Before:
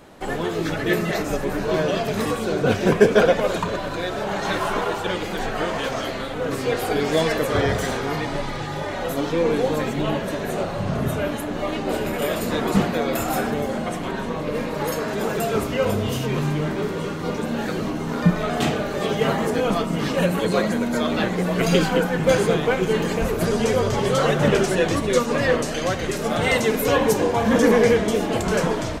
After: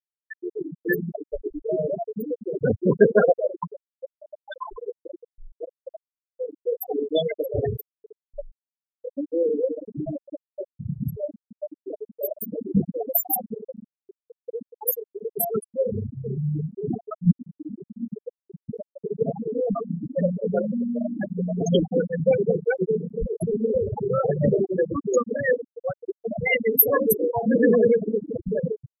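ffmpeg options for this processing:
-filter_complex "[0:a]asplit=3[a][b][c];[a]atrim=end=16.882[d];[b]atrim=start=16.878:end=18.692,asetpts=PTS-STARTPTS,areverse[e];[c]atrim=start=18.688[f];[d][e]acrossfade=d=0.004:c1=hsin:c2=hsin[g];[g][f]acrossfade=d=0.004:c1=hsin:c2=hsin,aemphasis=mode=production:type=75fm,afftfilt=real='re*gte(hypot(re,im),0.447)':imag='im*gte(hypot(re,im),0.447)':win_size=1024:overlap=0.75"

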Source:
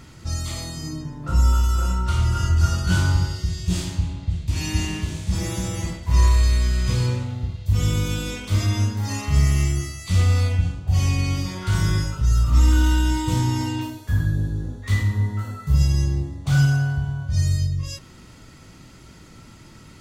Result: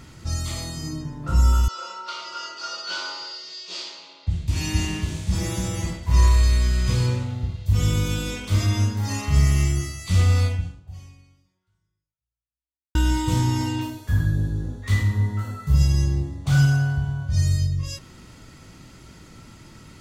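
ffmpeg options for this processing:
-filter_complex "[0:a]asettb=1/sr,asplit=3[a][b][c];[a]atrim=end=1.684[d];[b]atrim=start=1.68:end=4.27,asetpts=PTS-STARTPTS,afade=t=in:d=0.004:c=qsin,afade=t=out:st=2.586:d=0.004:c=qsin,highpass=f=490:w=0.5412,highpass=f=490:w=1.3066,equalizer=f=760:t=q:w=4:g=-7,equalizer=f=1.7k:t=q:w=4:g=-7,equalizer=f=4.6k:t=q:w=4:g=7,lowpass=f=5.5k:w=0.5412,lowpass=f=5.5k:w=1.3066[e];[c]atrim=start=4.266[f];[d][e]acrossfade=d=0.004:c1=hsin:c2=qsin[g];[g][f]acrossfade=d=0.004:c1=qsin:c2=hsin,asplit=2[h][i];[h]atrim=end=12.95,asetpts=PTS-STARTPTS,afade=t=out:st=10.45:d=2.5:c=exp[j];[i]atrim=start=12.95,asetpts=PTS-STARTPTS,afade=t=in:d=0.004:c=hsin[k];[j][k]concat=n=2:v=0:a=1"

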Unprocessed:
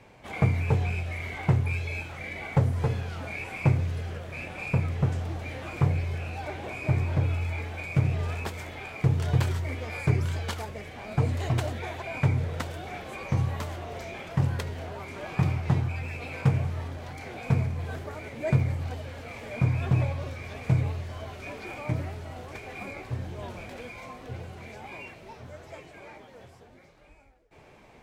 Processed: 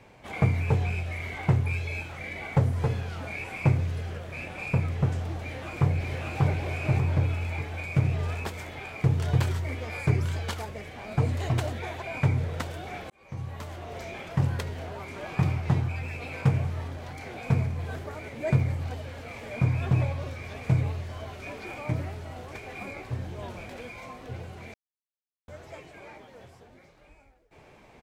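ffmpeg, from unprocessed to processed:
-filter_complex "[0:a]asplit=2[a][b];[b]afade=t=in:st=5.41:d=0.01,afade=t=out:st=6.39:d=0.01,aecho=0:1:590|1180|1770|2360|2950:0.944061|0.377624|0.15105|0.0604199|0.024168[c];[a][c]amix=inputs=2:normalize=0,asplit=4[d][e][f][g];[d]atrim=end=13.1,asetpts=PTS-STARTPTS,afade=t=out:st=13.096:d=0.004:c=hsin[h];[e]atrim=start=13.1:end=24.74,asetpts=PTS-STARTPTS,afade=t=in:d=0.94,afade=t=out:st=11.636:d=0.004:c=hsin[i];[f]atrim=start=24.74:end=25.48,asetpts=PTS-STARTPTS,volume=0[j];[g]atrim=start=25.48,asetpts=PTS-STARTPTS,afade=t=in:d=0.004:c=hsin[k];[h][i][j][k]concat=n=4:v=0:a=1"

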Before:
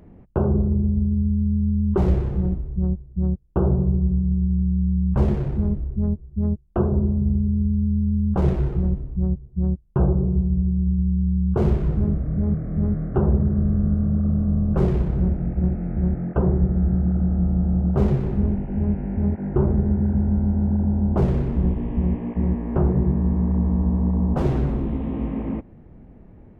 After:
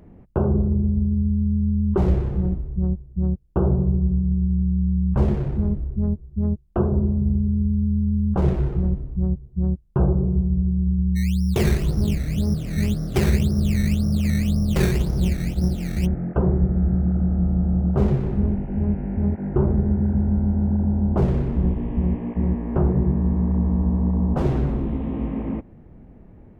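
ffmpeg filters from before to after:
-filter_complex "[0:a]asplit=3[a][b][c];[a]afade=t=out:st=11.15:d=0.02[d];[b]acrusher=samples=15:mix=1:aa=0.000001:lfo=1:lforange=15:lforate=1.9,afade=t=in:st=11.15:d=0.02,afade=t=out:st=16.05:d=0.02[e];[c]afade=t=in:st=16.05:d=0.02[f];[d][e][f]amix=inputs=3:normalize=0"

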